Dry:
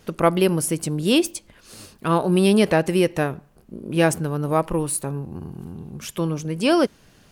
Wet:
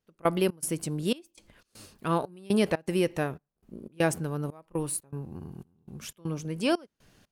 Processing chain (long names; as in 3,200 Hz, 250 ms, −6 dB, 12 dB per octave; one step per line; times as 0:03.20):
gate pattern "..xx.xxxx" 120 BPM −24 dB
level −7 dB